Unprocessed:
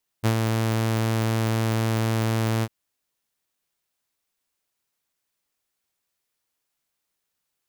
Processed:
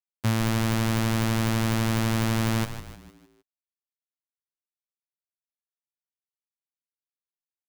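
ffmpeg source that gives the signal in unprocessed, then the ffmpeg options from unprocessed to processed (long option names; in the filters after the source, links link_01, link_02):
-f lavfi -i "aevalsrc='0.188*(2*mod(112*t,1)-1)':duration=2.45:sample_rate=44100,afade=type=in:duration=0.028,afade=type=out:start_time=0.028:duration=0.084:silence=0.631,afade=type=out:start_time=2.4:duration=0.05"
-filter_complex "[0:a]acrusher=bits=3:mix=0:aa=0.5,equalizer=frequency=410:width_type=o:width=1.8:gain=-7,asplit=6[link_01][link_02][link_03][link_04][link_05][link_06];[link_02]adelay=153,afreqshift=-100,volume=-11dB[link_07];[link_03]adelay=306,afreqshift=-200,volume=-17.7dB[link_08];[link_04]adelay=459,afreqshift=-300,volume=-24.5dB[link_09];[link_05]adelay=612,afreqshift=-400,volume=-31.2dB[link_10];[link_06]adelay=765,afreqshift=-500,volume=-38dB[link_11];[link_01][link_07][link_08][link_09][link_10][link_11]amix=inputs=6:normalize=0"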